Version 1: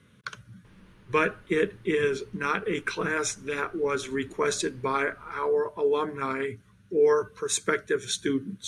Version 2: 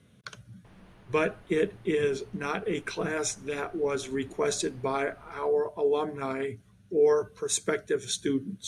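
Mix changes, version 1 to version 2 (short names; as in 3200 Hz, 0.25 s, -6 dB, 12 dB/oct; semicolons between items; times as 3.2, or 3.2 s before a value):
speech: add bell 1200 Hz -8 dB 2.2 oct; master: add bell 710 Hz +13 dB 0.48 oct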